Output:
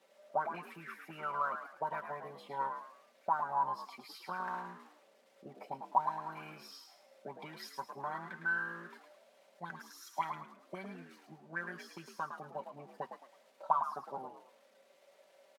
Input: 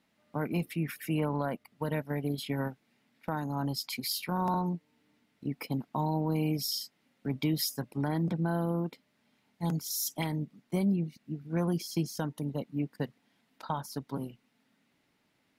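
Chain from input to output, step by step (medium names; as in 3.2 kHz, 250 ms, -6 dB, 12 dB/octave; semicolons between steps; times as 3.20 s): zero-crossing glitches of -35 dBFS; comb 5.2 ms, depth 75%; auto-wah 430–1600 Hz, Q 9.8, up, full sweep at -24 dBFS; on a send: frequency-shifting echo 108 ms, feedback 32%, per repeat +60 Hz, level -7.5 dB; on the sum: trim +11 dB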